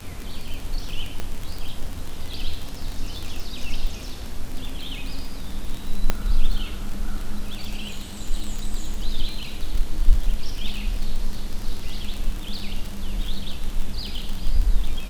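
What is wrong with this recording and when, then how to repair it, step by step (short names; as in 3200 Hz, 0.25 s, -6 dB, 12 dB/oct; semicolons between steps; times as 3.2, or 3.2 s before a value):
crackle 35/s -25 dBFS
1.2 pop -14 dBFS
6.1 pop -5 dBFS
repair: de-click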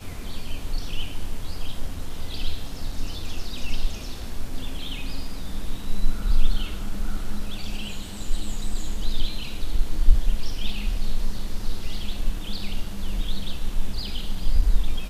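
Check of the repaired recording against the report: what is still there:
1.2 pop
6.1 pop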